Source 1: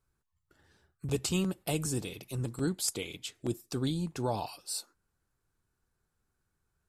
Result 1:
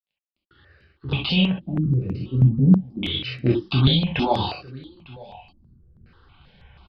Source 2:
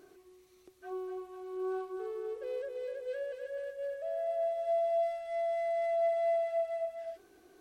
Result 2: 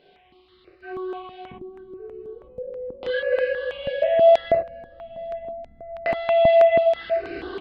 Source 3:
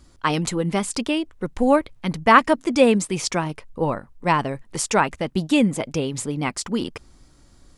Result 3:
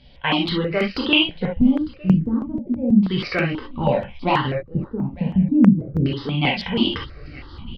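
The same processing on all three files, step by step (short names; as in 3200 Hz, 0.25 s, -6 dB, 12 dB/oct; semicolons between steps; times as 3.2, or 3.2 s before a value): recorder AGC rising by 5.1 dB/s; dynamic EQ 1100 Hz, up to -5 dB, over -37 dBFS, Q 3.4; in parallel at +3 dB: compressor, threshold -27 dBFS; on the sum: soft clip 0 dBFS; bit-crush 10-bit; LFO low-pass square 0.33 Hz 220–3100 Hz; echo 0.902 s -22 dB; non-linear reverb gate 90 ms flat, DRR -2 dB; downsampling 11025 Hz; step phaser 6.2 Hz 330–3400 Hz; gain -3.5 dB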